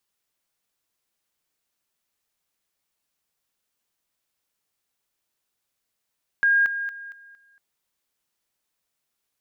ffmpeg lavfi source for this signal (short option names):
-f lavfi -i "aevalsrc='pow(10,(-15.5-10*floor(t/0.23))/20)*sin(2*PI*1620*t)':d=1.15:s=44100"